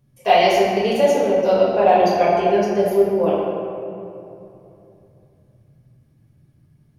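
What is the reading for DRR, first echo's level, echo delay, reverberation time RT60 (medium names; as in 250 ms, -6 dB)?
-8.0 dB, no echo, no echo, 2.9 s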